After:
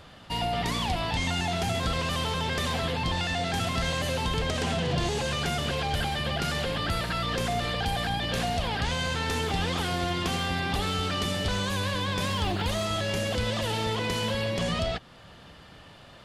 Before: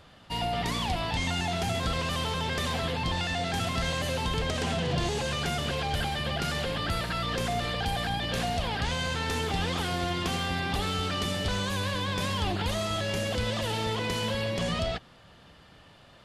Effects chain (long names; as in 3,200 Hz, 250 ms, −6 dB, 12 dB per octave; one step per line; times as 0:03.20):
in parallel at −3 dB: downward compressor, threshold −41 dBFS, peak gain reduction 15.5 dB
0:12.24–0:12.85: on the sum: surface crackle 550 per second −44 dBFS